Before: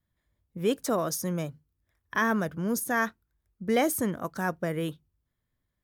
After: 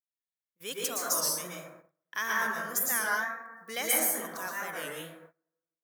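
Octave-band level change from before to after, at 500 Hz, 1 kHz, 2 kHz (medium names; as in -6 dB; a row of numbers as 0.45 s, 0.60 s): -9.0 dB, -3.0 dB, +1.0 dB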